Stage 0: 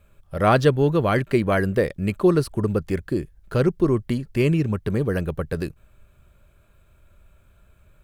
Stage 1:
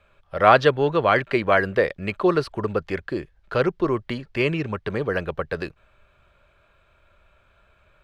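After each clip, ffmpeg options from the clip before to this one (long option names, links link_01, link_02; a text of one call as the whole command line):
ffmpeg -i in.wav -filter_complex "[0:a]acrossover=split=490 4900:gain=0.224 1 0.0708[link_01][link_02][link_03];[link_01][link_02][link_03]amix=inputs=3:normalize=0,volume=5.5dB" out.wav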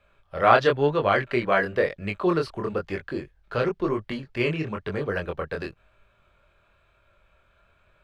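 ffmpeg -i in.wav -af "flanger=delay=19.5:depth=6.4:speed=0.99" out.wav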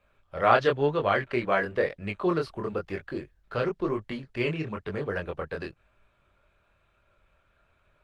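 ffmpeg -i in.wav -af "volume=-3dB" -ar 48000 -c:a libopus -b:a 20k out.opus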